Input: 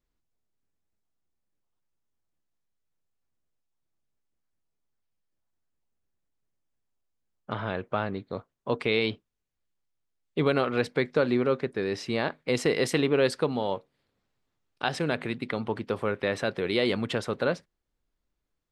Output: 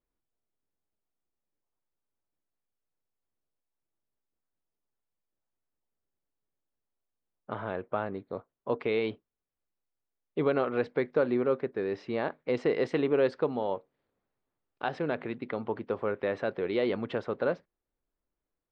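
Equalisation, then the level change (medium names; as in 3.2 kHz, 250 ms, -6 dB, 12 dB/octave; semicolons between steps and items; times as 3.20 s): tone controls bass -9 dB, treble +5 dB; tape spacing loss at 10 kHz 44 dB; +1.5 dB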